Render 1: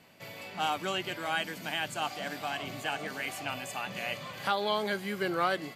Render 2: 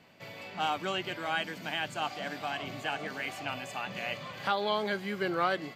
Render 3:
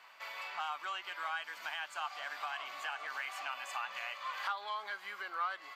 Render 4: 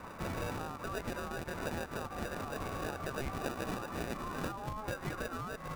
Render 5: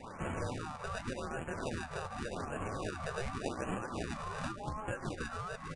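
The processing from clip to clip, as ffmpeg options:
-af "equalizer=f=11k:w=0.96:g=-12.5"
-af "acompressor=threshold=-40dB:ratio=4,asoftclip=type=tanh:threshold=-29.5dB,highpass=f=1.1k:t=q:w=2.7,volume=1dB"
-filter_complex "[0:a]acrossover=split=160[a][b];[b]acompressor=threshold=-43dB:ratio=6[c];[a][c]amix=inputs=2:normalize=0,acrossover=split=1600[d][e];[d]alimiter=level_in=25.5dB:limit=-24dB:level=0:latency=1,volume=-25.5dB[f];[e]acrusher=samples=41:mix=1:aa=0.000001[g];[f][g]amix=inputs=2:normalize=0,volume=12.5dB"
-af "aresample=22050,aresample=44100,flanger=delay=7.3:depth=6.7:regen=56:speed=1.8:shape=triangular,afftfilt=real='re*(1-between(b*sr/1024,250*pow(4800/250,0.5+0.5*sin(2*PI*0.87*pts/sr))/1.41,250*pow(4800/250,0.5+0.5*sin(2*PI*0.87*pts/sr))*1.41))':imag='im*(1-between(b*sr/1024,250*pow(4800/250,0.5+0.5*sin(2*PI*0.87*pts/sr))/1.41,250*pow(4800/250,0.5+0.5*sin(2*PI*0.87*pts/sr))*1.41))':win_size=1024:overlap=0.75,volume=4.5dB"

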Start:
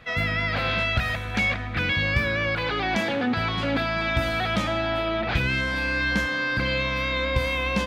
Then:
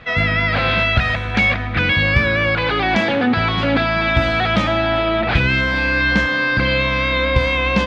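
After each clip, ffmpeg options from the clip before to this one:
-af "lowpass=4.6k,volume=8dB"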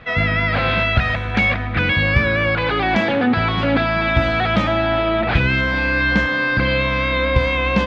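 -af "highshelf=f=3.8k:g=-7"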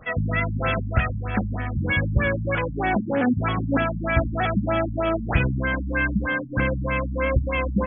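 -af "afftfilt=real='re*lt(b*sr/1024,240*pow(3600/240,0.5+0.5*sin(2*PI*3.2*pts/sr)))':imag='im*lt(b*sr/1024,240*pow(3600/240,0.5+0.5*sin(2*PI*3.2*pts/sr)))':win_size=1024:overlap=0.75,volume=-3.5dB"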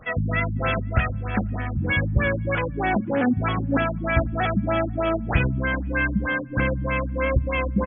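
-filter_complex "[0:a]asplit=2[a][b];[b]adelay=495.6,volume=-29dB,highshelf=f=4k:g=-11.2[c];[a][c]amix=inputs=2:normalize=0"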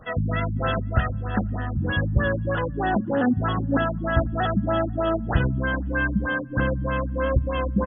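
-af "asuperstop=centerf=2300:order=4:qfactor=2.4"

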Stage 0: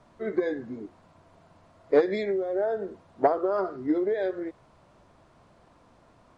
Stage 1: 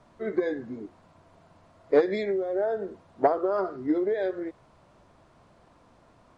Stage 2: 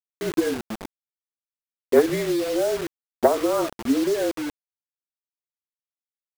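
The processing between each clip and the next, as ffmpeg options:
-af anull
-af "afreqshift=-36,anlmdn=10,acrusher=bits=5:mix=0:aa=0.000001,volume=4dB"

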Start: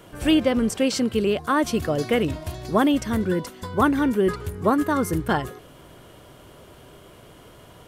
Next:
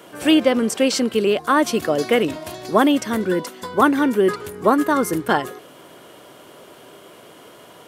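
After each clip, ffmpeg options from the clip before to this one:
-af "highpass=250,volume=5dB"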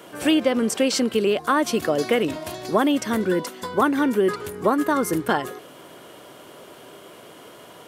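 -af "acompressor=threshold=-18dB:ratio=2"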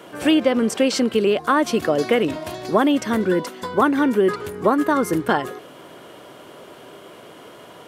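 -af "highshelf=f=5.5k:g=-7,volume=2.5dB"

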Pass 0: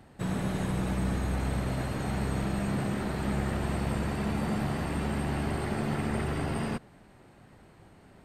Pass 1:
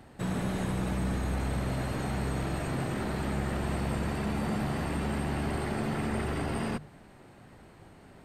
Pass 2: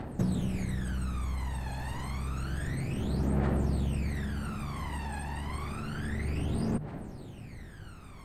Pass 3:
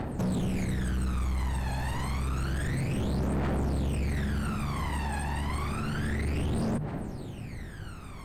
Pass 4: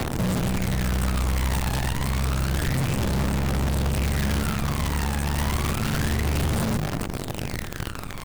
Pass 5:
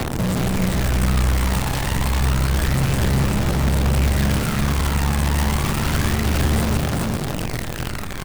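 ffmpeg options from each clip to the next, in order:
-filter_complex "[0:a]bandreject=f=50:t=h:w=6,bandreject=f=100:t=h:w=6,bandreject=f=150:t=h:w=6,bandreject=f=200:t=h:w=6,asplit=2[a][b];[b]alimiter=level_in=5.5dB:limit=-24dB:level=0:latency=1,volume=-5.5dB,volume=1dB[c];[a][c]amix=inputs=2:normalize=0,volume=-4dB"
-af "acompressor=threshold=-38dB:ratio=6,aphaser=in_gain=1:out_gain=1:delay=1.2:decay=0.78:speed=0.29:type=triangular,volume=1.5dB"
-af "asoftclip=type=hard:threshold=-31.5dB,volume=5.5dB"
-filter_complex "[0:a]asplit=2[a][b];[b]alimiter=level_in=12.5dB:limit=-24dB:level=0:latency=1:release=220,volume=-12.5dB,volume=1.5dB[c];[a][c]amix=inputs=2:normalize=0,acrossover=split=200|410|2900[d][e][f][g];[d]acompressor=threshold=-28dB:ratio=4[h];[e]acompressor=threshold=-42dB:ratio=4[i];[f]acompressor=threshold=-41dB:ratio=4[j];[g]acompressor=threshold=-50dB:ratio=4[k];[h][i][j][k]amix=inputs=4:normalize=0,acrusher=bits=6:dc=4:mix=0:aa=0.000001,volume=5dB"
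-af "aecho=1:1:396:0.668,volume=3dB"

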